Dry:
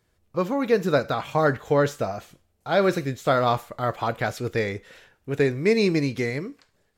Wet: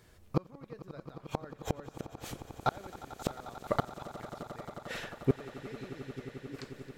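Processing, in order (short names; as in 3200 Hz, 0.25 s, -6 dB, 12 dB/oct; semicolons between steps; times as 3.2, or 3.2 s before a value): flipped gate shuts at -23 dBFS, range -39 dB; swelling echo 89 ms, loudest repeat 8, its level -18 dB; gain +8.5 dB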